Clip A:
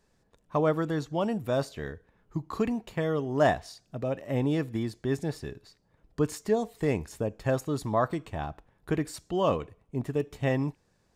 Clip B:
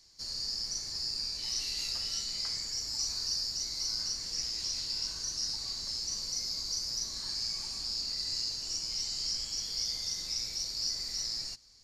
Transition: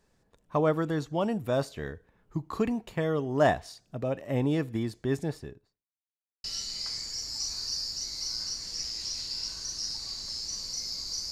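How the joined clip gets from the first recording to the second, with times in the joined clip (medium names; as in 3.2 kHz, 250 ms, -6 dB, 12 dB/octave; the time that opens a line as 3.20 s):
clip A
5.18–5.89 s: studio fade out
5.89–6.44 s: mute
6.44 s: go over to clip B from 2.03 s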